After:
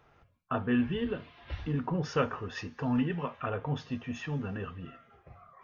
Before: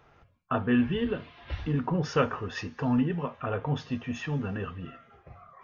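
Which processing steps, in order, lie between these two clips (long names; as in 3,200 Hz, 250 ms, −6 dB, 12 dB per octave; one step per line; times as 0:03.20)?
0:02.95–0:03.50: parametric band 2,500 Hz +5.5 dB 2.6 octaves
level −3.5 dB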